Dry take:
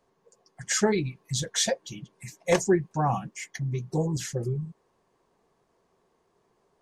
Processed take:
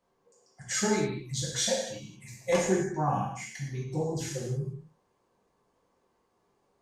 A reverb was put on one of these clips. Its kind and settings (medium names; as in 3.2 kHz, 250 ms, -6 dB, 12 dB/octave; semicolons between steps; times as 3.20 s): gated-style reverb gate 290 ms falling, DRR -4.5 dB; trim -8 dB